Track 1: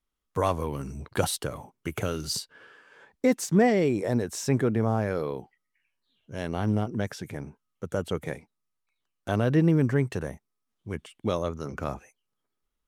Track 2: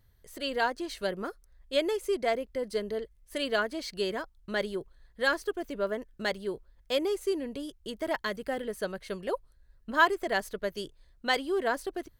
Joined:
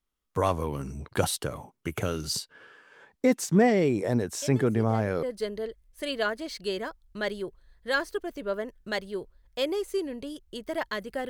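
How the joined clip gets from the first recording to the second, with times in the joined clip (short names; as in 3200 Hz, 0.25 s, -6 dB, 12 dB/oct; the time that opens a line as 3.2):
track 1
4.42 add track 2 from 1.75 s 0.81 s -13 dB
5.23 switch to track 2 from 2.56 s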